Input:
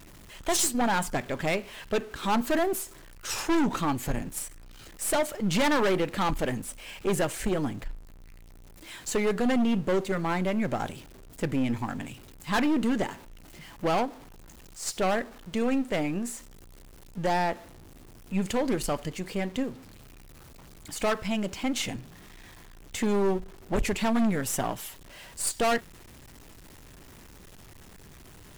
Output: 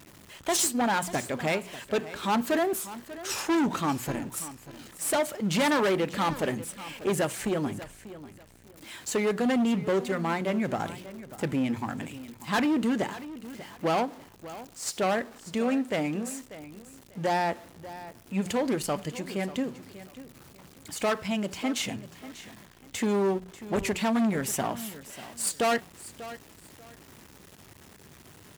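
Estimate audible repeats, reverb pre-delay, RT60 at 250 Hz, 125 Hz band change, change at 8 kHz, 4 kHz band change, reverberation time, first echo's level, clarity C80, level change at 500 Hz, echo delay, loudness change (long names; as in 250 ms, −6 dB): 2, no reverb audible, no reverb audible, −1.5 dB, 0.0 dB, 0.0 dB, no reverb audible, −15.5 dB, no reverb audible, 0.0 dB, 591 ms, 0.0 dB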